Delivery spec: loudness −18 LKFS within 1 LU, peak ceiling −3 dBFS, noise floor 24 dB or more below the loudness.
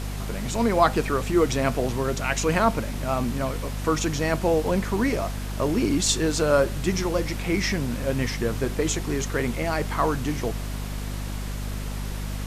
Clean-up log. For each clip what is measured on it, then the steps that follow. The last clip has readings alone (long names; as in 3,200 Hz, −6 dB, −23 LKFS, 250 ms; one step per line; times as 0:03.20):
mains hum 50 Hz; hum harmonics up to 250 Hz; level of the hum −28 dBFS; background noise floor −31 dBFS; target noise floor −49 dBFS; integrated loudness −25.0 LKFS; sample peak −5.0 dBFS; target loudness −18.0 LKFS
→ hum removal 50 Hz, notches 5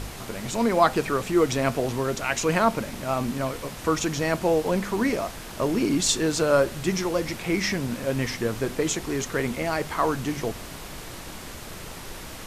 mains hum none found; background noise floor −39 dBFS; target noise floor −49 dBFS
→ noise reduction from a noise print 10 dB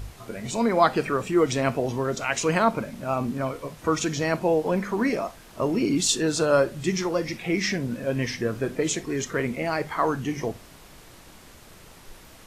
background noise floor −49 dBFS; target noise floor −50 dBFS
→ noise reduction from a noise print 6 dB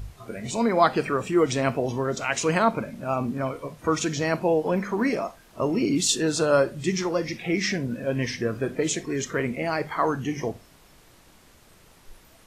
background noise floor −55 dBFS; integrated loudness −25.5 LKFS; sample peak −5.5 dBFS; target loudness −18.0 LKFS
→ level +7.5 dB
brickwall limiter −3 dBFS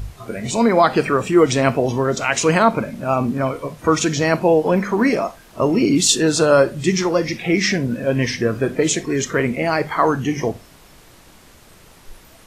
integrated loudness −18.0 LKFS; sample peak −3.0 dBFS; background noise floor −47 dBFS